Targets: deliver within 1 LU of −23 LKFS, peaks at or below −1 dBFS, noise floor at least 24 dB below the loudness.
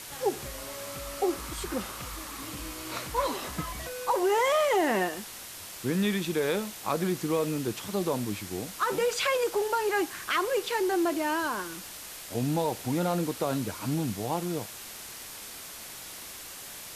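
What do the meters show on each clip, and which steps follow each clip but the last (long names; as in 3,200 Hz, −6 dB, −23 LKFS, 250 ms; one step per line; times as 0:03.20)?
background noise floor −43 dBFS; target noise floor −55 dBFS; integrated loudness −30.5 LKFS; sample peak −15.0 dBFS; target loudness −23.0 LKFS
→ noise reduction from a noise print 12 dB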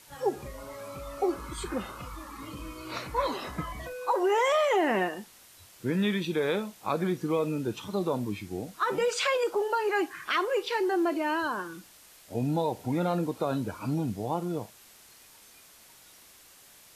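background noise floor −55 dBFS; integrated loudness −29.5 LKFS; sample peak −15.5 dBFS; target loudness −23.0 LKFS
→ level +6.5 dB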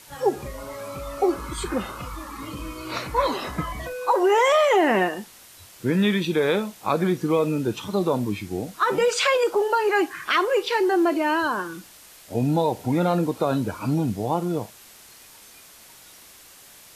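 integrated loudness −23.0 LKFS; sample peak −9.0 dBFS; background noise floor −48 dBFS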